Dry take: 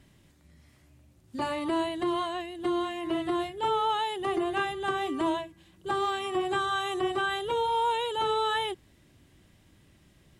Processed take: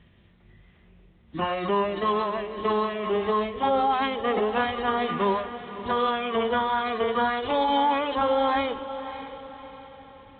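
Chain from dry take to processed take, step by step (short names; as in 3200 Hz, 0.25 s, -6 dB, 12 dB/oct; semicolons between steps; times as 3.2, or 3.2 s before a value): notches 60/120/180/240/300/360/420/480/540/600 Hz; formant-preserving pitch shift -8.5 st; on a send: diffused feedback echo 0.583 s, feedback 45%, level -12 dB; on the sum: gain +4.5 dB; µ-law 64 kbps 8000 Hz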